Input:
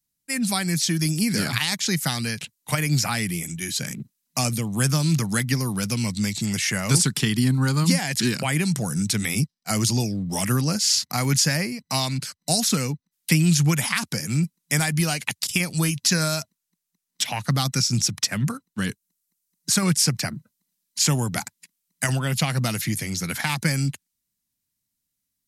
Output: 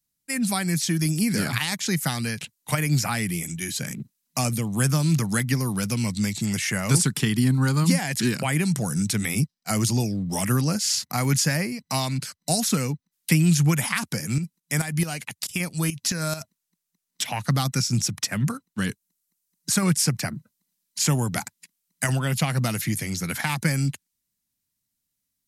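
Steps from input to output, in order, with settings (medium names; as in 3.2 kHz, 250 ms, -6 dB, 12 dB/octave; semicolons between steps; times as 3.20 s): dynamic bell 4.5 kHz, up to -5 dB, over -35 dBFS, Q 0.9; 14.38–16.41 s: tremolo saw up 4.6 Hz, depth 70%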